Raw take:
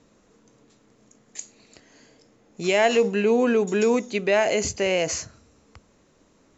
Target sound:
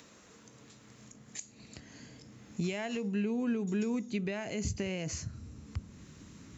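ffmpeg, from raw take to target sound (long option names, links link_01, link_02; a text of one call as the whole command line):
ffmpeg -i in.wav -filter_complex "[0:a]acrossover=split=1200[link_01][link_02];[link_02]acompressor=mode=upward:threshold=-52dB:ratio=2.5[link_03];[link_01][link_03]amix=inputs=2:normalize=0,highpass=81,acompressor=threshold=-42dB:ratio=2.5,asubboost=boost=10:cutoff=180" out.wav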